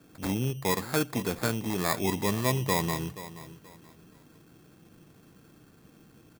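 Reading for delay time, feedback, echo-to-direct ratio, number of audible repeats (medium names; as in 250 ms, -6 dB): 478 ms, 28%, -14.5 dB, 2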